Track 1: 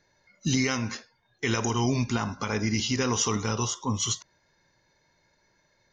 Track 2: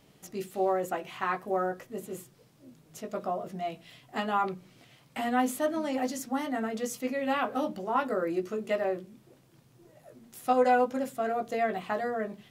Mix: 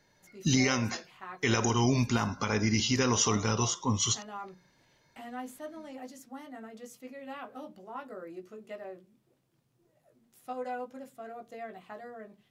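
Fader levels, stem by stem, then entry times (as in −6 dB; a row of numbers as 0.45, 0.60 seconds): −0.5, −13.5 decibels; 0.00, 0.00 seconds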